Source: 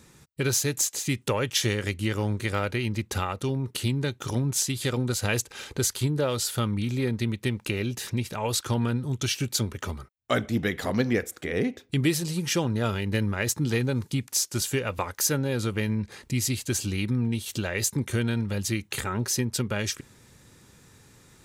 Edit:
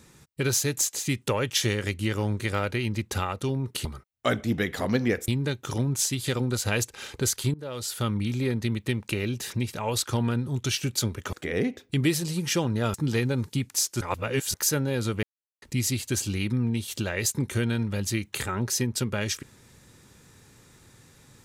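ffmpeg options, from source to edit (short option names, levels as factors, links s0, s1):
-filter_complex "[0:a]asplit=10[s0][s1][s2][s3][s4][s5][s6][s7][s8][s9];[s0]atrim=end=3.852[s10];[s1]atrim=start=9.898:end=11.332[s11];[s2]atrim=start=3.848:end=6.11,asetpts=PTS-STARTPTS,afade=t=out:st=2.258:d=0.004:c=hsin:silence=0.0891251[s12];[s3]atrim=start=6.11:end=9.902,asetpts=PTS-STARTPTS,afade=t=in:d=0.56:silence=0.0891251[s13];[s4]atrim=start=11.328:end=12.942[s14];[s5]atrim=start=13.518:end=14.592[s15];[s6]atrim=start=14.588:end=15.122,asetpts=PTS-STARTPTS,areverse[s16];[s7]atrim=start=15.118:end=15.81,asetpts=PTS-STARTPTS,afade=t=out:st=0.688:d=0.004:c=hsin[s17];[s8]atrim=start=15.81:end=16.2,asetpts=PTS-STARTPTS,volume=0[s18];[s9]atrim=start=16.2,asetpts=PTS-STARTPTS,afade=t=in:d=0.004:c=hsin[s19];[s10][s11]acrossfade=d=0.004:c1=hsin:c2=hsin[s20];[s12][s13]concat=n=2:v=0:a=1[s21];[s20][s21]acrossfade=d=0.004:c1=hsin:c2=hsin[s22];[s22][s14]acrossfade=d=0.004:c1=hsin:c2=hsin[s23];[s23][s15]acrossfade=d=0.004:c1=hsin:c2=hsin[s24];[s24][s16]acrossfade=d=0.004:c1=hsin:c2=hsin[s25];[s17][s18][s19]concat=n=3:v=0:a=1[s26];[s25][s26]acrossfade=d=0.004:c1=hsin:c2=hsin"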